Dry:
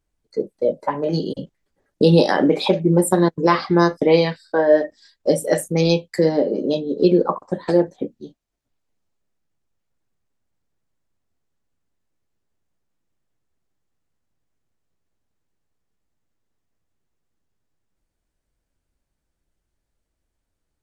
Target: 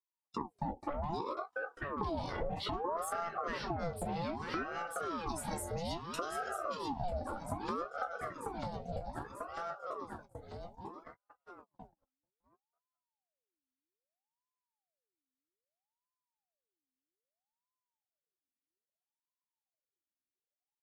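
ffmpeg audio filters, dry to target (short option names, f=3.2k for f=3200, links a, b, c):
-filter_complex "[0:a]asettb=1/sr,asplit=3[a][b][c];[a]atrim=end=4.634[d];[b]atrim=start=4.63:end=6.95,asetpts=PTS-STARTPTS,afade=t=in:d=0.004:c=qsin,afade=t=out:st=2.316:d=0.004:c=qsin,acrossover=split=190|3000[e][f][g];[f]acompressor=threshold=-35dB:ratio=2.5[h];[e][h][g]amix=inputs=3:normalize=0[i];[c]atrim=start=6.946[j];[d][i]acrossfade=d=0.004:c1=hsin:c2=qsin[k];[k][j]acrossfade=d=0.004:c1=qsin:c2=hsin,alimiter=limit=-13dB:level=0:latency=1:release=14,asoftclip=type=tanh:threshold=-14dB,equalizer=f=160:t=o:w=2.1:g=6,asplit=2[l][m];[m]adelay=14,volume=-10dB[n];[l][n]amix=inputs=2:normalize=0,aecho=1:1:943|1886|2829|3772|4715:0.355|0.167|0.0784|0.0368|0.0173,flanger=delay=3.3:depth=1.6:regen=-11:speed=0.15:shape=sinusoidal,agate=range=-34dB:threshold=-53dB:ratio=16:detection=peak,acompressor=threshold=-38dB:ratio=5,aeval=exprs='val(0)*sin(2*PI*640*n/s+640*0.6/0.62*sin(2*PI*0.62*n/s))':c=same,volume=4dB"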